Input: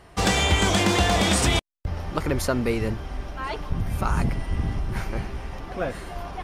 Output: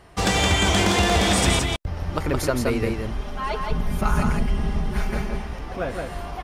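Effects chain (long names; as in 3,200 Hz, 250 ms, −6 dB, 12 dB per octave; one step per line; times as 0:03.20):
0:03.04–0:05.42: comb filter 4.8 ms, depth 74%
single-tap delay 168 ms −3.5 dB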